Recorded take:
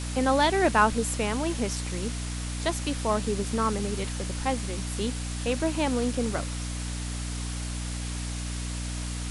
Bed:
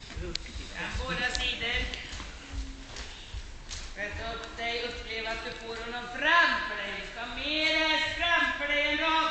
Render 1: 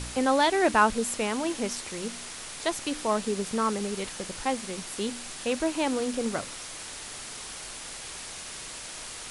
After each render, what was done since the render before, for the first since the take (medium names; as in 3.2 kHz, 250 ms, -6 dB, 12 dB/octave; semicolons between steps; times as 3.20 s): de-hum 60 Hz, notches 5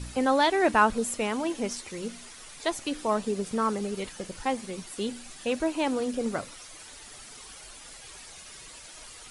noise reduction 10 dB, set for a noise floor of -40 dBFS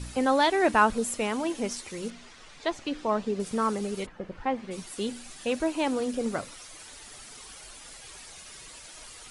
2.10–3.40 s: distance through air 110 m; 4.05–4.70 s: low-pass 1.3 kHz -> 3 kHz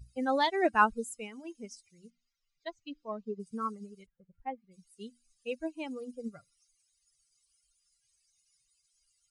expander on every frequency bin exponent 2; upward expansion 1.5:1, over -43 dBFS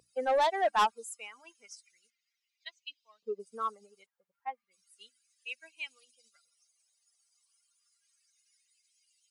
LFO high-pass saw up 0.31 Hz 480–3600 Hz; saturation -21 dBFS, distortion -7 dB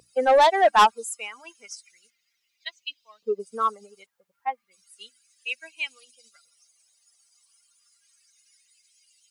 trim +10 dB